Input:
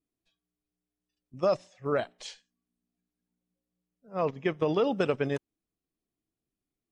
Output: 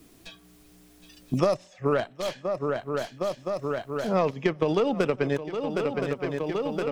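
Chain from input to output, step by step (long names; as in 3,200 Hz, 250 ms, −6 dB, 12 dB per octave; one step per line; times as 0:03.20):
stylus tracing distortion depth 0.077 ms
feedback echo with a long and a short gap by turns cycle 1,018 ms, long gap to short 3 to 1, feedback 39%, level −16.5 dB
multiband upward and downward compressor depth 100%
level +4 dB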